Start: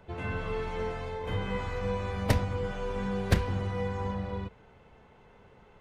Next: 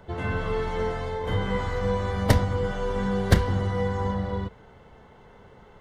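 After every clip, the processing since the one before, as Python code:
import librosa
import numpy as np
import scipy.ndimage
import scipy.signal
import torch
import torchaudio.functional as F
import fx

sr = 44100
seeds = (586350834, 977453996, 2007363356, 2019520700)

y = fx.notch(x, sr, hz=2500.0, q=5.1)
y = F.gain(torch.from_numpy(y), 6.0).numpy()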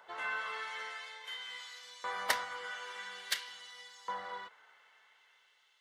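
y = fx.filter_lfo_highpass(x, sr, shape='saw_up', hz=0.49, low_hz=990.0, high_hz=4400.0, q=1.1)
y = F.gain(torch.from_numpy(y), -3.0).numpy()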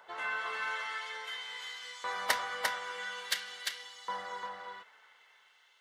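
y = x + 10.0 ** (-3.5 / 20.0) * np.pad(x, (int(348 * sr / 1000.0), 0))[:len(x)]
y = F.gain(torch.from_numpy(y), 1.5).numpy()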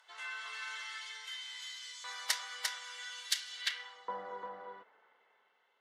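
y = fx.filter_sweep_bandpass(x, sr, from_hz=6400.0, to_hz=350.0, start_s=3.49, end_s=4.13, q=0.84)
y = F.gain(torch.from_numpy(y), 3.5).numpy()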